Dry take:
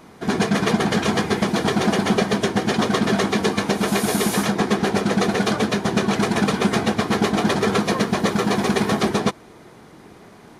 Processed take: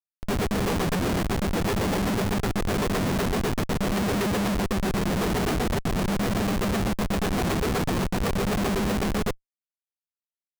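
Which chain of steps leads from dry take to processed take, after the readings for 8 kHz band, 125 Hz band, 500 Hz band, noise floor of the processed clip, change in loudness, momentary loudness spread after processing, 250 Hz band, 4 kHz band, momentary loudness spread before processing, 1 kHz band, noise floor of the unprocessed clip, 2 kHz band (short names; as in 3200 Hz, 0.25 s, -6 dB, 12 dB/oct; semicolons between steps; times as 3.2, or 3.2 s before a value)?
-6.0 dB, -2.0 dB, -6.0 dB, under -85 dBFS, -5.5 dB, 2 LU, -6.0 dB, -7.5 dB, 2 LU, -6.5 dB, -46 dBFS, -7.0 dB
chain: chorus voices 2, 0.45 Hz, delay 11 ms, depth 1.3 ms; Schmitt trigger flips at -22.5 dBFS; gain -1 dB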